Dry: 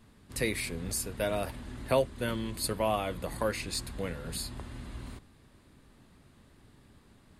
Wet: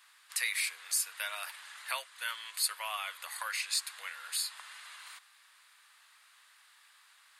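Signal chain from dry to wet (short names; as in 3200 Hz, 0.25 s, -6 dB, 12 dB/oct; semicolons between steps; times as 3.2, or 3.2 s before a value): in parallel at +2 dB: compressor, threshold -39 dBFS, peak gain reduction 17 dB; on the sum: HPF 1200 Hz 24 dB/oct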